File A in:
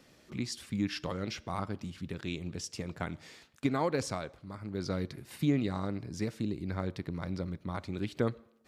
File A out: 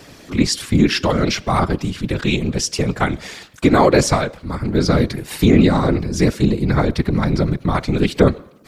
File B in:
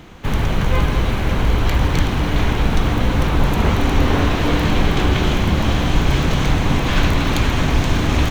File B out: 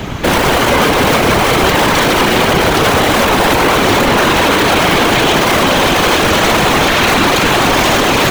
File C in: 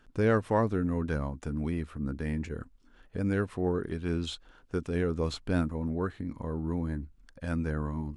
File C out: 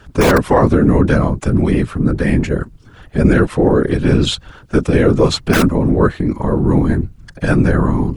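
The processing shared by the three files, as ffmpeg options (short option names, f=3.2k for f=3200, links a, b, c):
-filter_complex "[0:a]acrossover=split=290|820|2200[a][b][c][d];[a]aeval=exprs='(mod(11.9*val(0)+1,2)-1)/11.9':c=same[e];[e][b][c][d]amix=inputs=4:normalize=0,afftfilt=real='hypot(re,im)*cos(2*PI*random(0))':imag='hypot(re,im)*sin(2*PI*random(1))':win_size=512:overlap=0.75,alimiter=level_in=26dB:limit=-1dB:release=50:level=0:latency=1,volume=-1dB"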